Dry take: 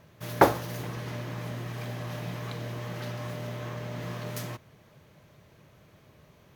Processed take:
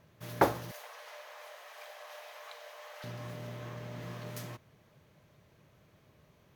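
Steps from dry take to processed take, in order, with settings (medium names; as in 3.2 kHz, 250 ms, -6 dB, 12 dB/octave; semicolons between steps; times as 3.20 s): 0.71–3.04 s: steep high-pass 530 Hz 48 dB/octave; trim -6.5 dB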